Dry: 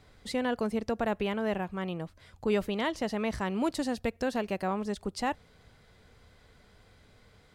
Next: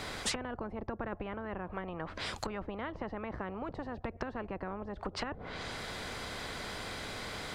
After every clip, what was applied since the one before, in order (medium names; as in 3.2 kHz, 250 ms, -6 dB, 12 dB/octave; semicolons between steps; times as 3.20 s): low-pass that closes with the level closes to 340 Hz, closed at -29 dBFS; spectrum-flattening compressor 4:1; trim +1 dB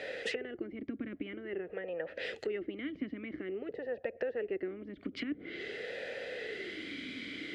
talking filter e-i 0.49 Hz; trim +12 dB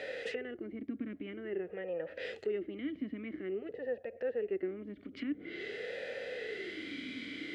harmonic-percussive split percussive -11 dB; trim +2 dB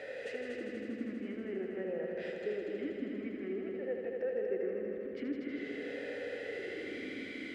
peaking EQ 3.7 kHz -6.5 dB 1.1 oct; on a send: multi-head delay 80 ms, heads all three, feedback 74%, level -8.5 dB; on the sum: trim -2.5 dB